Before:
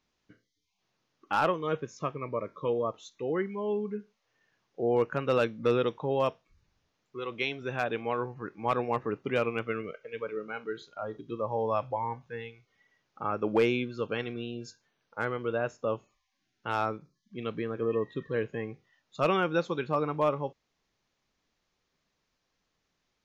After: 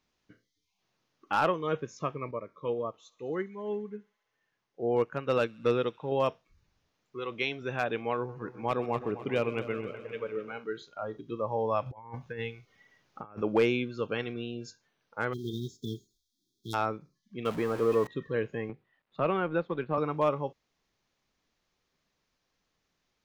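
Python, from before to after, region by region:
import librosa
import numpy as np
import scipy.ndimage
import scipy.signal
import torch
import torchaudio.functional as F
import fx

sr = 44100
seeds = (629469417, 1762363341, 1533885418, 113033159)

y = fx.chain(x, sr, fx.echo_wet_highpass(ms=68, feedback_pct=85, hz=2000.0, wet_db=-21.5),
    fx.upward_expand(threshold_db=-37.0, expansion=1.5), at=(2.31, 6.12))
y = fx.chain(y, sr, fx.dynamic_eq(hz=1400.0, q=1.1, threshold_db=-42.0, ratio=4.0, max_db=-5),
    fx.echo_heads(ms=128, heads='first and second', feedback_pct=63, wet_db=-17.0), at=(8.16, 10.59))
y = fx.chain(y, sr, fx.low_shelf(hz=280.0, db=2.5),
    fx.over_compress(threshold_db=-39.0, ratio=-0.5), at=(11.86, 13.42))
y = fx.envelope_flatten(y, sr, power=0.6, at=(15.32, 16.73), fade=0.02)
y = fx.brickwall_bandstop(y, sr, low_hz=430.0, high_hz=3200.0, at=(15.32, 16.73), fade=0.02)
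y = fx.peak_eq(y, sr, hz=740.0, db=7.5, octaves=1.7, at=(15.32, 16.73), fade=0.02)
y = fx.chain(y, sr, fx.zero_step(step_db=-39.0),
    fx.peak_eq(hz=860.0, db=7.0, octaves=1.4), at=(17.45, 18.07))
y = fx.chain(y, sr, fx.law_mismatch(coded='A'),
    fx.air_absorb(metres=420.0),
    fx.band_squash(depth_pct=40), at=(18.69, 19.98))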